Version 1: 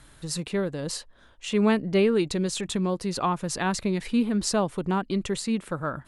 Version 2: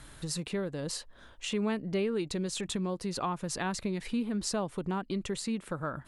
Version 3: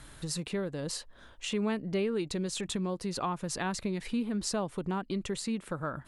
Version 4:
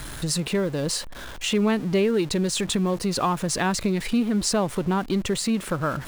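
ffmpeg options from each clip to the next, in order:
-af "acompressor=threshold=-39dB:ratio=2,volume=2dB"
-af anull
-af "aeval=exprs='val(0)+0.5*0.00708*sgn(val(0))':c=same,volume=8.5dB"

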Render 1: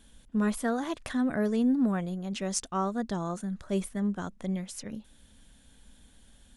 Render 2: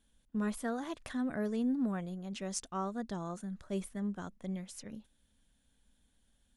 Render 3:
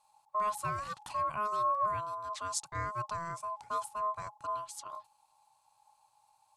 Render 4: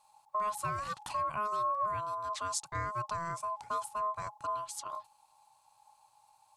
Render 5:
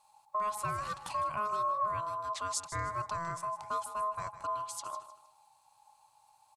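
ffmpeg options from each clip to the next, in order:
-af "agate=range=-8dB:threshold=-46dB:ratio=16:detection=peak,volume=-7dB"
-af "aeval=exprs='val(0)*sin(2*PI*840*n/s)':c=same,equalizer=f=125:t=o:w=1:g=11,equalizer=f=250:t=o:w=1:g=-9,equalizer=f=500:t=o:w=1:g=-7,equalizer=f=1k:t=o:w=1:g=10,equalizer=f=2k:t=o:w=1:g=-5,equalizer=f=4k:t=o:w=1:g=4,equalizer=f=8k:t=o:w=1:g=7"
-af "acompressor=threshold=-37dB:ratio=2,volume=3.5dB"
-af "aecho=1:1:155|310|465:0.224|0.0672|0.0201"

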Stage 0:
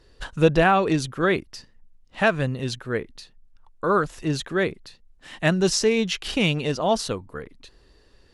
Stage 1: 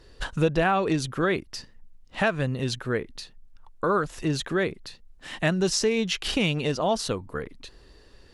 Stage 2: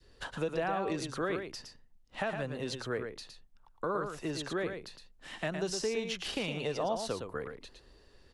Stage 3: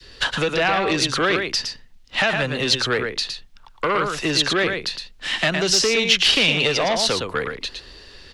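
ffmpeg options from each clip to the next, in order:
-af "acompressor=threshold=-29dB:ratio=2,volume=3.5dB"
-filter_complex "[0:a]acrossover=split=86|330[a][b][c];[a]acompressor=threshold=-47dB:ratio=4[d];[b]acompressor=threshold=-35dB:ratio=4[e];[c]acompressor=threshold=-27dB:ratio=4[f];[d][e][f]amix=inputs=3:normalize=0,adynamicequalizer=threshold=0.00891:dfrequency=680:dqfactor=0.7:tfrequency=680:tqfactor=0.7:attack=5:release=100:ratio=0.375:range=2.5:mode=boostabove:tftype=bell,aecho=1:1:113:0.473,volume=-8dB"
-filter_complex "[0:a]aeval=exprs='0.106*(cos(1*acos(clip(val(0)/0.106,-1,1)))-cos(1*PI/2))+0.0168*(cos(5*acos(clip(val(0)/0.106,-1,1)))-cos(5*PI/2))':c=same,acrossover=split=230|870|4700[a][b][c][d];[c]crystalizer=i=8.5:c=0[e];[a][b][e][d]amix=inputs=4:normalize=0,volume=8dB"

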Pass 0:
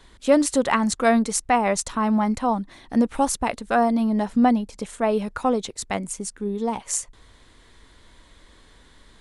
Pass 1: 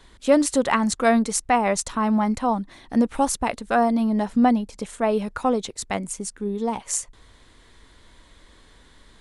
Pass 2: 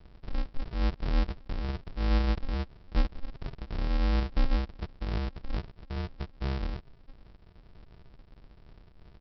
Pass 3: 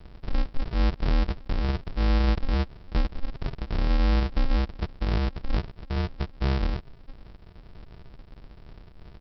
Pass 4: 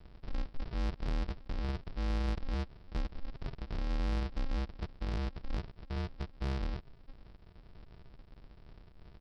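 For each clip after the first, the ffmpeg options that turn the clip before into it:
-af anull
-filter_complex "[0:a]firequalizer=gain_entry='entry(290,0);entry(1000,-10);entry(2600,0)':delay=0.05:min_phase=1,acrossover=split=240[a][b];[b]acompressor=threshold=-42dB:ratio=3[c];[a][c]amix=inputs=2:normalize=0,aresample=11025,acrusher=samples=41:mix=1:aa=0.000001,aresample=44100"
-af "alimiter=limit=-23dB:level=0:latency=1:release=73,volume=7dB"
-af "asoftclip=type=tanh:threshold=-19.5dB,volume=-8dB"

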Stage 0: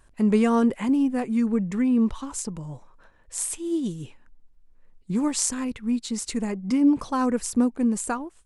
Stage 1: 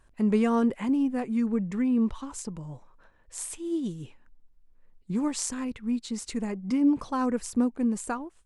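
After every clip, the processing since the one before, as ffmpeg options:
-af "highshelf=f=6.4k:g=-6,volume=-3.5dB"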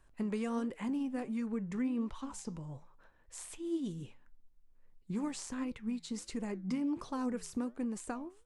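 -filter_complex "[0:a]acrossover=split=530|1500|4600[a][b][c][d];[a]acompressor=threshold=-30dB:ratio=4[e];[b]acompressor=threshold=-41dB:ratio=4[f];[c]acompressor=threshold=-46dB:ratio=4[g];[d]acompressor=threshold=-43dB:ratio=4[h];[e][f][g][h]amix=inputs=4:normalize=0,flanger=delay=5.5:depth=7.4:regen=82:speed=1.4:shape=triangular"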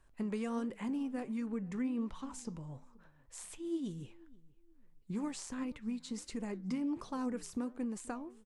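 -filter_complex "[0:a]asplit=2[a][b];[b]adelay=480,lowpass=f=2.2k:p=1,volume=-23.5dB,asplit=2[c][d];[d]adelay=480,lowpass=f=2.2k:p=1,volume=0.3[e];[a][c][e]amix=inputs=3:normalize=0,volume=-1.5dB"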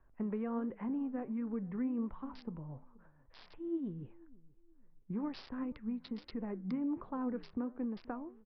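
-filter_complex "[0:a]acrossover=split=310|1900[a][b][c];[c]acrusher=bits=6:mix=0:aa=0.000001[d];[a][b][d]amix=inputs=3:normalize=0,aresample=11025,aresample=44100"

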